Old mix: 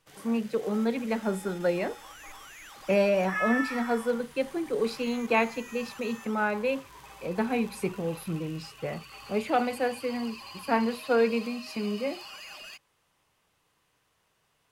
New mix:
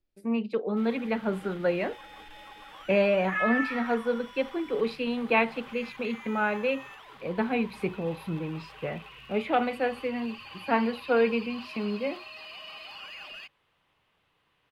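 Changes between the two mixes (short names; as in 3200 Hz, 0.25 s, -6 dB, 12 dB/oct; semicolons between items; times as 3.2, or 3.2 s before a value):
first sound: entry +0.70 s; master: add resonant high shelf 4600 Hz -11.5 dB, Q 1.5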